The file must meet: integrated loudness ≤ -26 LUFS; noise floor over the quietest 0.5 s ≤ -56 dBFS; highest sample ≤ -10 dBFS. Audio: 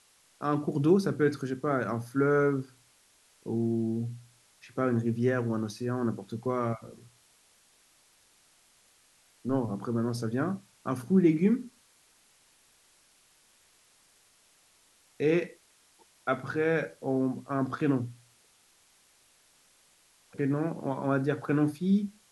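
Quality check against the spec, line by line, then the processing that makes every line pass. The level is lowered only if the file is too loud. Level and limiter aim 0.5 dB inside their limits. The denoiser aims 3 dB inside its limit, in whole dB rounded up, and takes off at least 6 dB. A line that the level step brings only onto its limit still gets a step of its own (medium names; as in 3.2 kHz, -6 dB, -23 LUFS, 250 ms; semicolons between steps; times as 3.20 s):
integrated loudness -29.5 LUFS: pass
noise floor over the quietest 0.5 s -64 dBFS: pass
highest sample -11.0 dBFS: pass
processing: none needed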